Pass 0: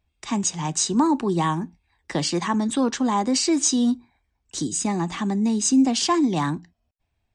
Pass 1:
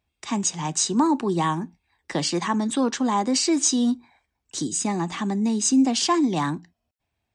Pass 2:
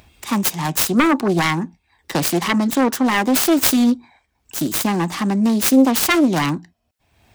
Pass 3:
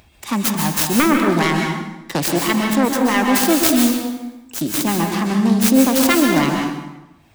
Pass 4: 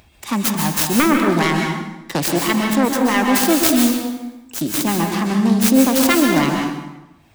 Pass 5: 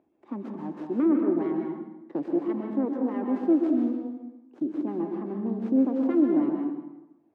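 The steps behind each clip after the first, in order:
spectral gain 4.04–4.25, 450–9100 Hz +8 dB; HPF 130 Hz 6 dB/oct
self-modulated delay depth 0.67 ms; upward compressor, threshold -42 dBFS; gain +6.5 dB
plate-style reverb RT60 1 s, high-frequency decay 0.8×, pre-delay 0.115 s, DRR 1.5 dB; gain -1 dB
nothing audible
ladder band-pass 360 Hz, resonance 55%

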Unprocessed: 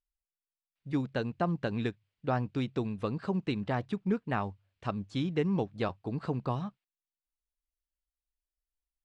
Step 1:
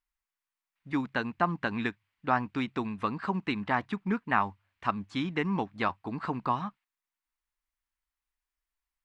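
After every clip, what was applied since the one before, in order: graphic EQ 125/250/500/1000/2000 Hz -7/+4/-7/+10/+8 dB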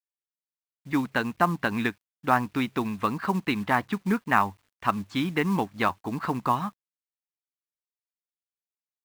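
companded quantiser 6-bit; gain +4.5 dB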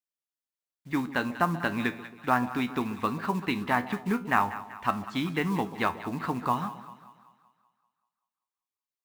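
resonator 82 Hz, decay 0.31 s, harmonics all, mix 60%; split-band echo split 830 Hz, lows 0.136 s, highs 0.192 s, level -14 dB; gain +2.5 dB

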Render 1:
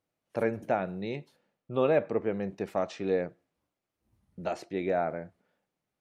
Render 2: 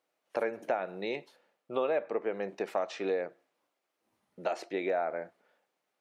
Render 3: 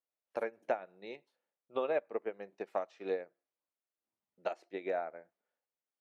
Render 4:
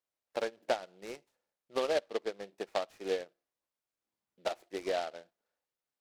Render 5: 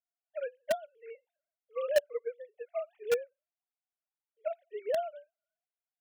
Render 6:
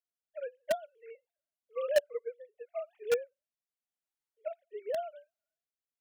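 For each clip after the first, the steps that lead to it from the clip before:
HPF 440 Hz 12 dB/oct; high shelf 6100 Hz -6 dB; compressor 3:1, threshold -36 dBFS, peak gain reduction 11 dB; gain +6.5 dB
upward expander 2.5:1, over -39 dBFS
noise-modulated delay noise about 2700 Hz, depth 0.055 ms; gain +2 dB
sine-wave speech; in parallel at -7 dB: bit-crush 4-bit
rotary speaker horn 0.9 Hz

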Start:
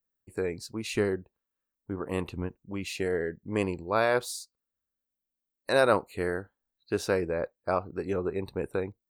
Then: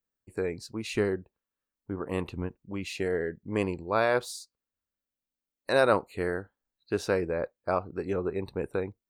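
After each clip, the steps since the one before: high shelf 7900 Hz -6.5 dB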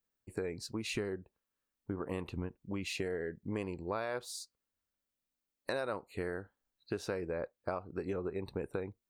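compressor 6:1, threshold -35 dBFS, peak gain reduction 16.5 dB; gain +1 dB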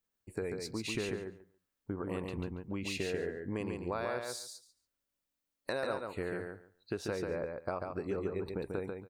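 feedback echo 0.141 s, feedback 16%, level -4.5 dB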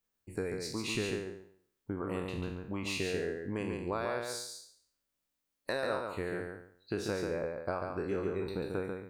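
spectral trails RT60 0.59 s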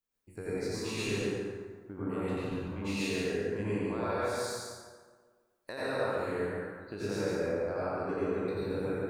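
plate-style reverb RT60 1.6 s, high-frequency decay 0.55×, pre-delay 75 ms, DRR -8.5 dB; gain -7.5 dB

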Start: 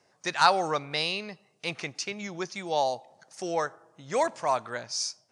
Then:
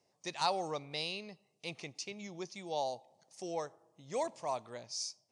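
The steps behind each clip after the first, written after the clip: bell 1500 Hz -14 dB 0.67 oct; gain -8 dB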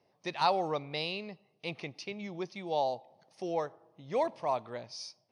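running mean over 6 samples; gain +5.5 dB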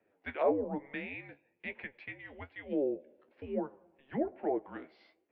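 treble ducked by the level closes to 940 Hz, closed at -27.5 dBFS; mistuned SSB -280 Hz 590–2900 Hz; flange 1.1 Hz, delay 8.5 ms, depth 5.7 ms, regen +47%; gain +5.5 dB

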